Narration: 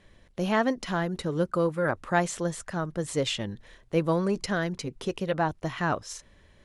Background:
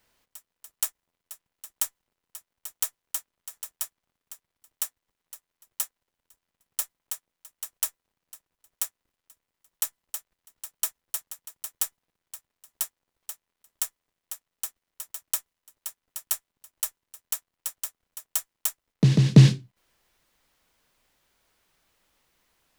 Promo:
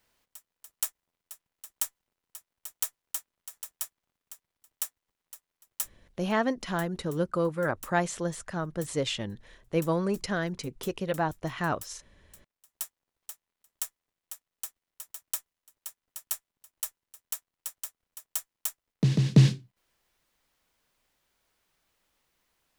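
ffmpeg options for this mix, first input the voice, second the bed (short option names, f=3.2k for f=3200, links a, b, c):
-filter_complex "[0:a]adelay=5800,volume=-2dB[a];[1:a]volume=9dB,afade=t=out:st=6.29:d=0.29:silence=0.199526,afade=t=in:st=12.18:d=0.79:silence=0.251189[b];[a][b]amix=inputs=2:normalize=0"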